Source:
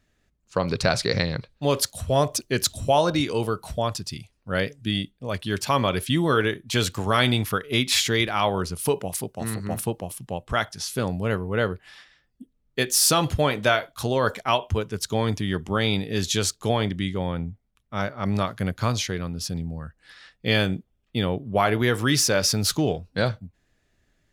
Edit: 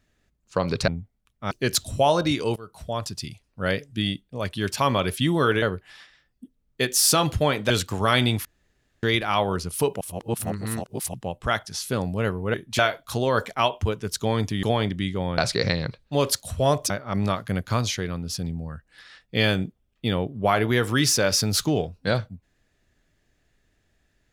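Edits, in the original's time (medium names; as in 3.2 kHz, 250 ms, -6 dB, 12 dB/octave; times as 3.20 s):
0.88–2.40 s: swap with 17.38–18.01 s
3.45–4.06 s: fade in, from -21.5 dB
6.51–6.76 s: swap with 11.60–13.68 s
7.51–8.09 s: room tone
9.07–10.20 s: reverse
15.52–16.63 s: delete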